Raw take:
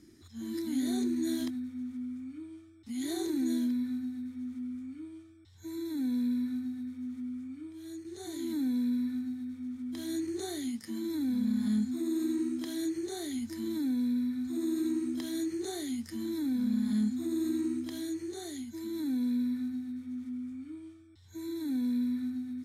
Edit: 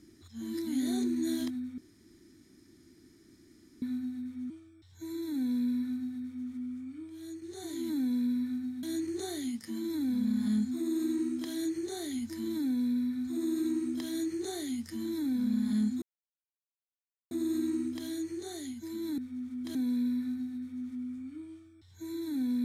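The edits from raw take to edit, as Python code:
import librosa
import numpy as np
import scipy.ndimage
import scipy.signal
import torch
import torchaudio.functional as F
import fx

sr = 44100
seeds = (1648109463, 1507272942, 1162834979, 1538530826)

y = fx.edit(x, sr, fx.room_tone_fill(start_s=1.78, length_s=2.04),
    fx.cut(start_s=4.5, length_s=0.63),
    fx.move(start_s=9.46, length_s=0.57, to_s=19.09),
    fx.insert_silence(at_s=17.22, length_s=1.29), tone=tone)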